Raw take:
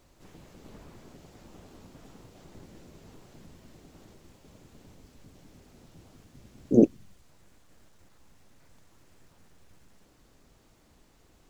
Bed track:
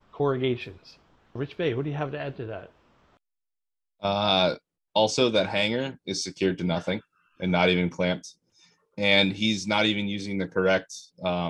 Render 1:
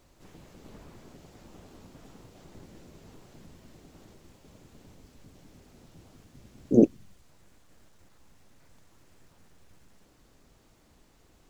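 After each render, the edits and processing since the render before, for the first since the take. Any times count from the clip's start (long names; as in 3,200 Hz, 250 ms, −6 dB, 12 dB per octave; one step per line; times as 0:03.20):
no processing that can be heard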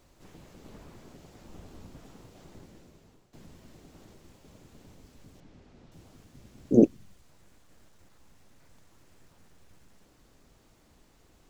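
0:01.49–0:01.99: low-shelf EQ 120 Hz +7.5 dB
0:02.49–0:03.33: fade out, to −15 dB
0:05.40–0:05.92: high-frequency loss of the air 120 metres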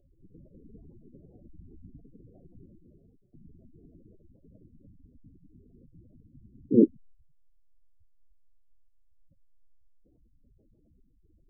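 gate on every frequency bin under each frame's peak −10 dB strong
flat-topped bell 1,400 Hz −15 dB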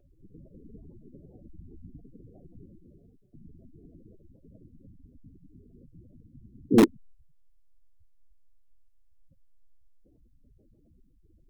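in parallel at −9 dB: wrap-around overflow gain 11.5 dB
on the sum: pitch vibrato 4.7 Hz 48 cents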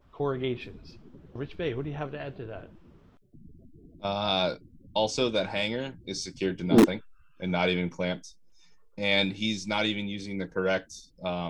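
mix in bed track −4.5 dB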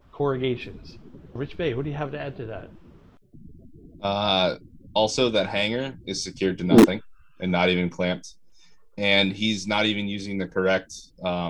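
level +5 dB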